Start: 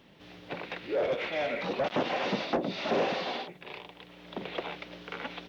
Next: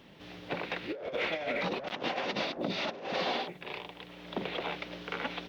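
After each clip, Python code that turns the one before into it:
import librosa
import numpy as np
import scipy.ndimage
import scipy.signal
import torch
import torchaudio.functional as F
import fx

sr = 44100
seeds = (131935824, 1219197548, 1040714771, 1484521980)

y = fx.over_compress(x, sr, threshold_db=-33.0, ratio=-0.5)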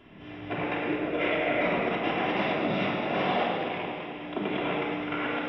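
y = scipy.signal.savgol_filter(x, 25, 4, mode='constant')
y = fx.echo_alternate(y, sr, ms=104, hz=1400.0, feedback_pct=71, wet_db=-4.0)
y = fx.room_shoebox(y, sr, seeds[0], volume_m3=2000.0, walls='mixed', distance_m=3.1)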